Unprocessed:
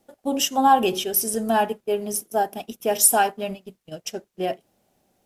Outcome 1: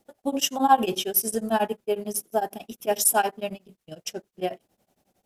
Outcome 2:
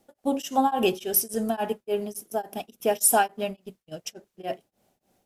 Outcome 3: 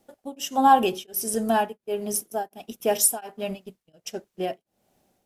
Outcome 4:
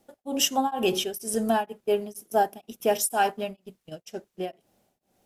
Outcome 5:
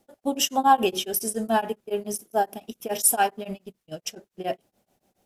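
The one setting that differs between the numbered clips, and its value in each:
beating tremolo, nulls at: 11, 3.5, 1.4, 2.1, 7.1 Hz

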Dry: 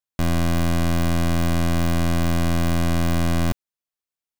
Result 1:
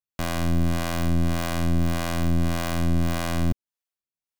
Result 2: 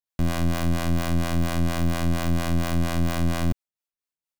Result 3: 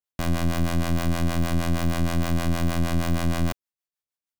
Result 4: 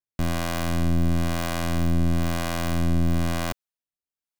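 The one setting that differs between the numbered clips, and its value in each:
harmonic tremolo, rate: 1.7, 4.3, 6.4, 1 Hz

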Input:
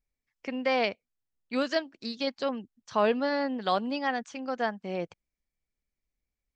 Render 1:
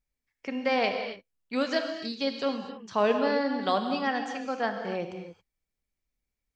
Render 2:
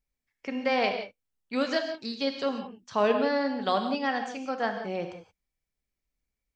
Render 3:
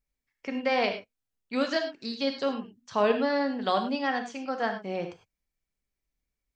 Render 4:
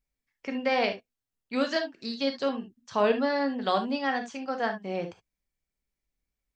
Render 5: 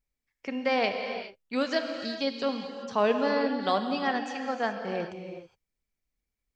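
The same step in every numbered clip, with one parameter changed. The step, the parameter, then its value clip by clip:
non-linear reverb, gate: 300, 200, 130, 90, 440 ms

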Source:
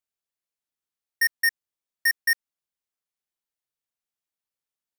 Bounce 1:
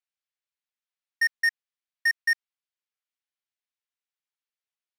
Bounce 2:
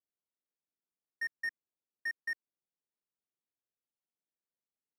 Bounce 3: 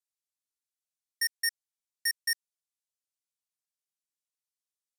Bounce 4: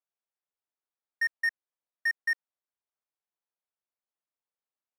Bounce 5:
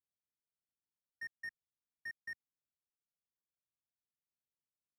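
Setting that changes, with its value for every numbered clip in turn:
band-pass, frequency: 2400, 290, 7800, 760, 110 Hz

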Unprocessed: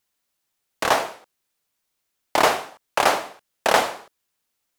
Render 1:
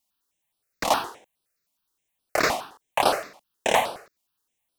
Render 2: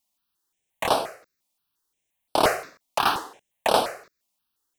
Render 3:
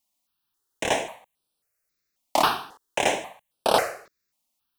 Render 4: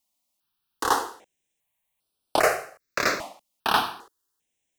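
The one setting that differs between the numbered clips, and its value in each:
step phaser, rate: 9.6, 5.7, 3.7, 2.5 Hz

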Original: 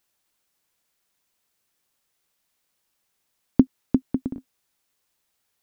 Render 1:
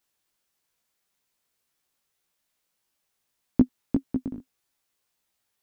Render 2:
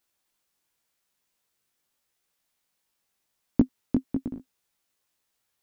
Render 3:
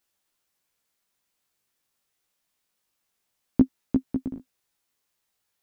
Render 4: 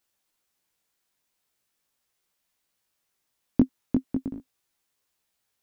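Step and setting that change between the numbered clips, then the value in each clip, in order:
chorus, rate: 1.7, 0.89, 0.25, 0.4 Hz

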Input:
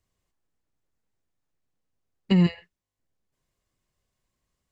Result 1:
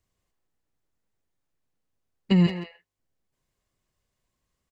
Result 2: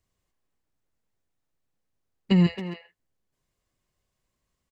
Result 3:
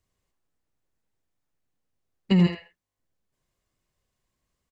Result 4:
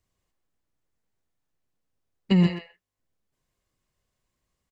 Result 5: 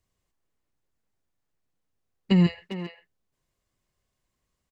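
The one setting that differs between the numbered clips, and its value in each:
speakerphone echo, time: 170, 270, 80, 120, 400 ms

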